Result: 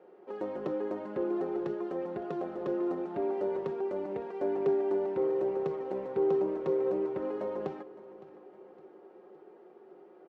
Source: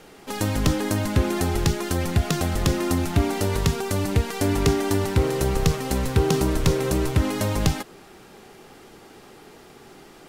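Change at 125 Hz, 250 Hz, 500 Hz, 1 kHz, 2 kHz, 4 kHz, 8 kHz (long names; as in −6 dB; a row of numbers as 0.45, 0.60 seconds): −27.5 dB, −10.5 dB, −3.0 dB, −11.0 dB, −20.0 dB, below −30 dB, below −40 dB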